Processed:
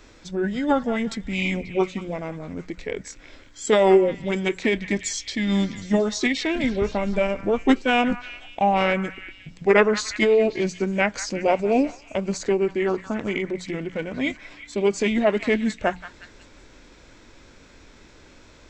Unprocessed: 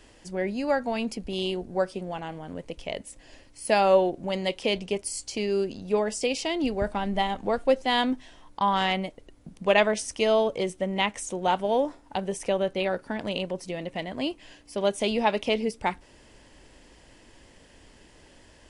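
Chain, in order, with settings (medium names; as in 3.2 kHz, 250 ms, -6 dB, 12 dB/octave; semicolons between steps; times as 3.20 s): hum notches 60/120/180 Hz; formant shift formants -5 st; repeats whose band climbs or falls 179 ms, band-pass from 1.4 kHz, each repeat 0.7 oct, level -10 dB; trim +4.5 dB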